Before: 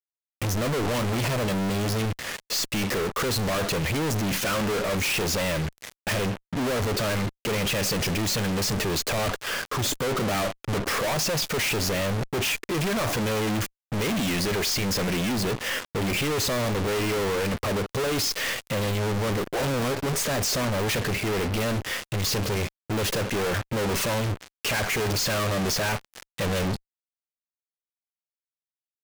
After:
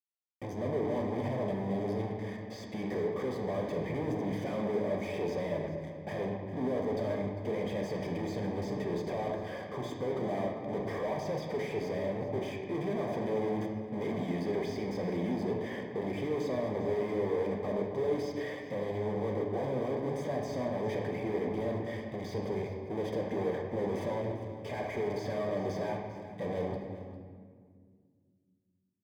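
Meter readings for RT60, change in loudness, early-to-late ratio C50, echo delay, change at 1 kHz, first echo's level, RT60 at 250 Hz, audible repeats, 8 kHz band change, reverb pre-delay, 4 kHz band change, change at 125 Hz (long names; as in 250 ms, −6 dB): 1.9 s, −8.5 dB, 3.5 dB, 400 ms, −9.0 dB, −15.0 dB, 3.1 s, 1, below −25 dB, 3 ms, −22.5 dB, −10.5 dB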